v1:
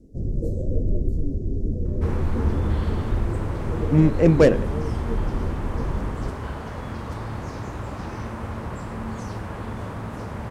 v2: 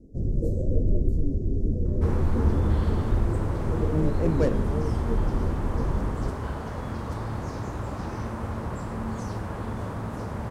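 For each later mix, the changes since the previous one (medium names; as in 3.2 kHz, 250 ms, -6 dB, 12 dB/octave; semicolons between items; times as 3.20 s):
speech -10.5 dB; master: add peaking EQ 2.5 kHz -4.5 dB 1.3 oct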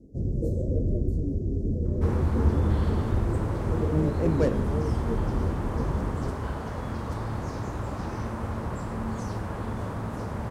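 first sound: add high-pass 44 Hz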